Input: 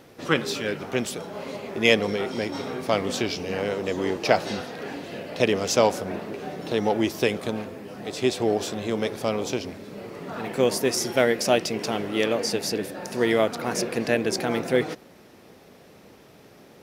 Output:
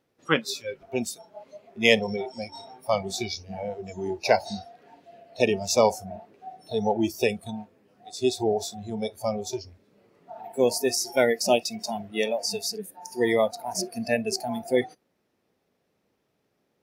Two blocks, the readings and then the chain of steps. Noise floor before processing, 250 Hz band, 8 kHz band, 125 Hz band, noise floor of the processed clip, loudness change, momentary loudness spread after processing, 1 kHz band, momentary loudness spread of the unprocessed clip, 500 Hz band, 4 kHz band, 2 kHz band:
-51 dBFS, -3.5 dB, 0.0 dB, -4.5 dB, -74 dBFS, -1.0 dB, 16 LU, -1.0 dB, 13 LU, -1.5 dB, -1.5 dB, -2.5 dB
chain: spectral noise reduction 23 dB

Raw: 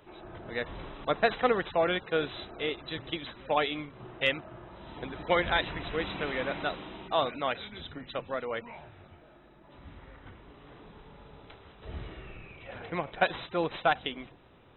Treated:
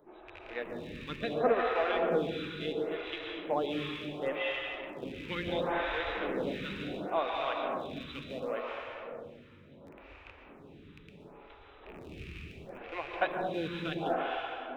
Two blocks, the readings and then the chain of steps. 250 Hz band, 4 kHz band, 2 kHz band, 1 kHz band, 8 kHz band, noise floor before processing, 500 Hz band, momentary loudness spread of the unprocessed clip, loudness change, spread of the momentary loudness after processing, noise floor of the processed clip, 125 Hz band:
0.0 dB, -5.0 dB, -4.5 dB, -3.0 dB, no reading, -57 dBFS, -1.0 dB, 19 LU, -3.0 dB, 23 LU, -55 dBFS, -2.5 dB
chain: rattle on loud lows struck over -45 dBFS, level -29 dBFS; peaking EQ 320 Hz +4.5 dB 1.9 oct; hum notches 60/120 Hz; plate-style reverb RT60 3.2 s, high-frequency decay 0.8×, pre-delay 110 ms, DRR -1.5 dB; lamp-driven phase shifter 0.71 Hz; trim -5 dB

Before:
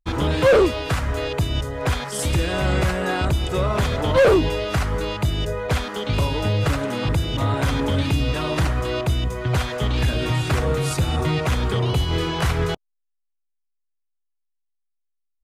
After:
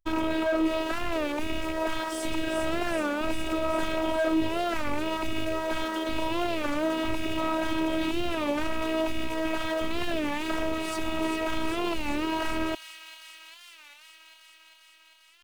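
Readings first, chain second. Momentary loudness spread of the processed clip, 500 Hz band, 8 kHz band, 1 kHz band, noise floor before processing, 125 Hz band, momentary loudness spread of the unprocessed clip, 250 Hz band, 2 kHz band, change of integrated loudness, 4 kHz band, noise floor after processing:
5 LU, -7.5 dB, -9.0 dB, -4.0 dB, -75 dBFS, -23.0 dB, 7 LU, -2.5 dB, -5.0 dB, -7.5 dB, -6.5 dB, -56 dBFS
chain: rattle on loud lows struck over -26 dBFS, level -21 dBFS; in parallel at -4 dB: bit crusher 5-bit; on the sum: peaking EQ 100 Hz -9.5 dB 1.4 oct; peak limiter -16 dBFS, peak gain reduction 11 dB; treble shelf 2.9 kHz -11.5 dB; on a send: feedback echo behind a high-pass 398 ms, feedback 77%, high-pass 3 kHz, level -6.5 dB; on the sum: robot voice 320 Hz; warped record 33 1/3 rpm, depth 160 cents

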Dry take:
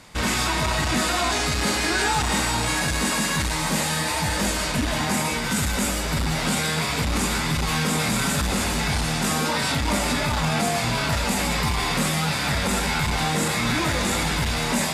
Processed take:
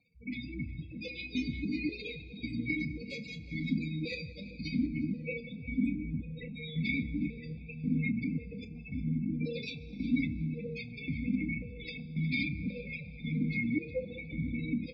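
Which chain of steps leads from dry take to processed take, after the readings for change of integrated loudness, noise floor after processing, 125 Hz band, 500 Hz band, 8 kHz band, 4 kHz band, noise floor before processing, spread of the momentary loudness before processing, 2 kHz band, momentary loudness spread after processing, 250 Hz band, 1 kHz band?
-13.0 dB, -47 dBFS, -10.5 dB, -15.5 dB, under -40 dB, -22.0 dB, -25 dBFS, 2 LU, -15.0 dB, 10 LU, -6.5 dB, under -40 dB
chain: self-modulated delay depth 0.1 ms; elliptic band-stop 470–2300 Hz, stop band 60 dB; spectral gate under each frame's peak -10 dB strong; level rider gain up to 9 dB; peak limiter -14.5 dBFS, peak gain reduction 6 dB; static phaser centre 1.9 kHz, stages 8; doubling 31 ms -12 dB; on a send: filtered feedback delay 361 ms, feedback 66%, low-pass 2.2 kHz, level -11 dB; on the sum: plate-style reverb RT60 4.4 s, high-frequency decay 0.55×, DRR 12 dB; stepped vowel filter 3.7 Hz; trim +6.5 dB

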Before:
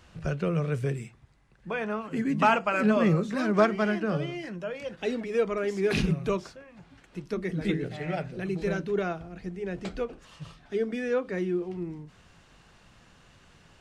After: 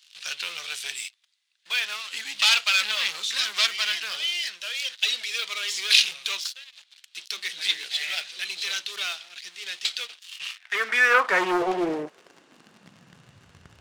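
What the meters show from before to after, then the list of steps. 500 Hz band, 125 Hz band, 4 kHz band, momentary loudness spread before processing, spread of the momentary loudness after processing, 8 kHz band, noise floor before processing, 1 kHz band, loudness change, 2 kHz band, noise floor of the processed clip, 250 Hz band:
-6.0 dB, under -20 dB, +21.5 dB, 14 LU, 17 LU, +19.0 dB, -58 dBFS, +1.0 dB, +4.5 dB, +10.0 dB, -63 dBFS, -9.0 dB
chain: waveshaping leveller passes 3; high-pass sweep 3.6 kHz -> 79 Hz, 10.15–13.66 s; loudspeaker Doppler distortion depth 0.31 ms; trim +5.5 dB

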